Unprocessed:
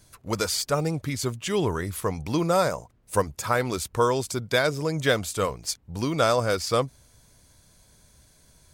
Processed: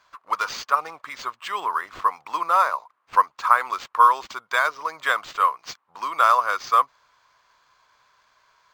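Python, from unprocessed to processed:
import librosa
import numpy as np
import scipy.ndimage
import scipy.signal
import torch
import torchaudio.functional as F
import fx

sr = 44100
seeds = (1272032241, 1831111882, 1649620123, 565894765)

y = fx.highpass_res(x, sr, hz=1100.0, q=5.1)
y = fx.high_shelf(y, sr, hz=5900.0, db=-10.0)
y = np.interp(np.arange(len(y)), np.arange(len(y))[::4], y[::4])
y = y * librosa.db_to_amplitude(1.0)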